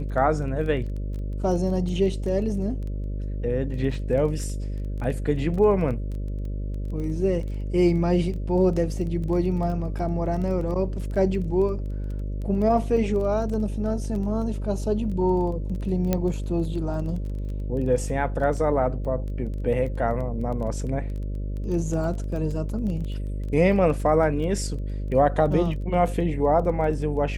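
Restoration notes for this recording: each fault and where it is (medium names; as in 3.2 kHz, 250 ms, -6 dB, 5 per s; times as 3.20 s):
buzz 50 Hz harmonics 12 -29 dBFS
crackle 14 per s -32 dBFS
16.13 s: pop -9 dBFS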